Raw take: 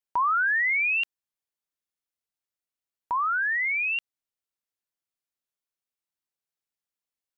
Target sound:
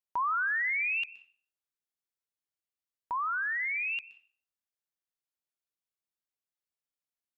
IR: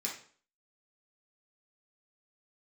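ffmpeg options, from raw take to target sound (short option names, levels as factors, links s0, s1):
-filter_complex "[0:a]asplit=2[s0][s1];[1:a]atrim=start_sample=2205,adelay=121[s2];[s1][s2]afir=irnorm=-1:irlink=0,volume=0.126[s3];[s0][s3]amix=inputs=2:normalize=0,volume=0.501"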